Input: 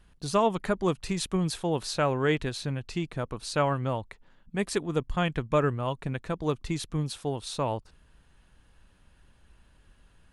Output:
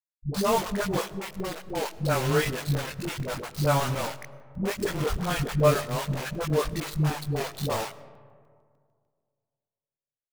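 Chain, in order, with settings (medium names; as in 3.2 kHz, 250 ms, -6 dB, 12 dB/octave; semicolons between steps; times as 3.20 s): 0.95–1.94 s: three-band isolator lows -16 dB, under 270 Hz, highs -13 dB, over 2.5 kHz; hum notches 60/120/180/240/300/360/420/480/540 Hz; in parallel at +0.5 dB: compression 6:1, threshold -37 dBFS, peak gain reduction 17 dB; on the sum: loudest bins only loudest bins 64; bit crusher 5-bit; chorus voices 6, 0.28 Hz, delay 21 ms, depth 1.2 ms; crossover distortion -38 dBFS; phase dispersion highs, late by 113 ms, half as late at 330 Hz; on a send at -17.5 dB: reverberation RT60 2.1 s, pre-delay 60 ms; on the sum: crackling interface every 0.15 s, samples 128, zero, from 0.95 s; trim +3.5 dB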